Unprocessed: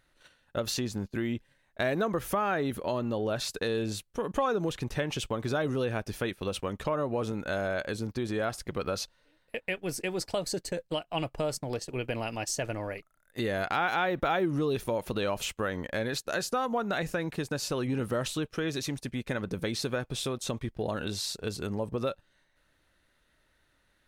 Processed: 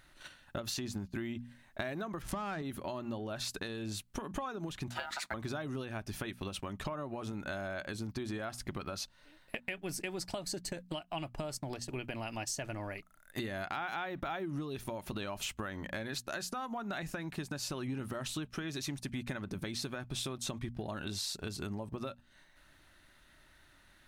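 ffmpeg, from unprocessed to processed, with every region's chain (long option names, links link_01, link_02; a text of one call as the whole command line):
ffmpeg -i in.wav -filter_complex "[0:a]asettb=1/sr,asplit=3[link_01][link_02][link_03];[link_01]atrim=end=2.224[link_04];[link_02]atrim=start=2.22:end=2.62,asetpts=PTS-STARTPTS,afade=type=in:duration=0.004:curve=qsin,afade=type=out:start_time=0.396:duration=0.004:curve=qsin,bass=frequency=250:gain=8,treble=frequency=4000:gain=12,adynamicsmooth=sensitivity=5:basefreq=1600[link_05];[link_03]atrim=start=2.616[link_06];[link_04][link_05]acrossfade=duration=0.004:curve1=hsin:curve2=qsin[link_07];[link_07][link_06]acrossfade=duration=0.004:curve1=qsin:curve2=hsin,asettb=1/sr,asplit=3[link_08][link_09][link_10];[link_08]atrim=end=4.894[link_11];[link_09]atrim=start=4.89:end=5.34,asetpts=PTS-STARTPTS,afade=type=in:duration=0.004:curve=qsin,afade=type=out:start_time=0.446:duration=0.004:curve=qsin,highpass=190,aeval=exprs='val(0)*sin(2*PI*1100*n/s)':channel_layout=same,acrusher=bits=9:mode=log:mix=0:aa=0.000001[link_12];[link_10]atrim=start=5.336[link_13];[link_11][link_12]acrossfade=duration=0.004:curve1=hsin:curve2=qsin[link_14];[link_14][link_13]acrossfade=duration=0.004:curve1=qsin:curve2=hsin,bandreject=frequency=60:width_type=h:width=6,bandreject=frequency=120:width_type=h:width=6,bandreject=frequency=180:width_type=h:width=6,bandreject=frequency=240:width_type=h:width=6,acompressor=threshold=-43dB:ratio=6,equalizer=frequency=480:width_type=o:width=0.28:gain=-13,volume=7.5dB" out.wav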